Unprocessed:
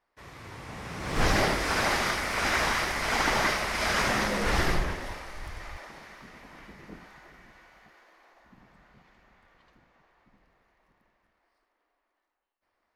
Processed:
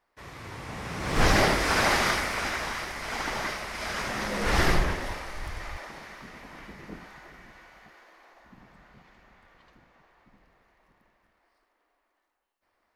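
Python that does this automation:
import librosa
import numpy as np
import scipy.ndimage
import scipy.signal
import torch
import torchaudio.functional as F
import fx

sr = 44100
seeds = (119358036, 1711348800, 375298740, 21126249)

y = fx.gain(x, sr, db=fx.line((2.17, 3.0), (2.59, -6.0), (4.12, -6.0), (4.64, 3.5)))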